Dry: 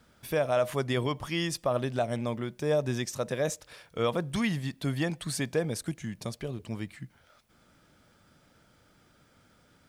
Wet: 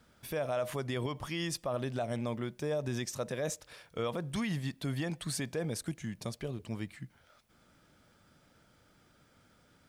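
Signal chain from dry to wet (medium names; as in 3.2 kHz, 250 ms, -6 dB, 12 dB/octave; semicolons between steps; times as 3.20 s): peak limiter -22.5 dBFS, peak gain reduction 5.5 dB; trim -2.5 dB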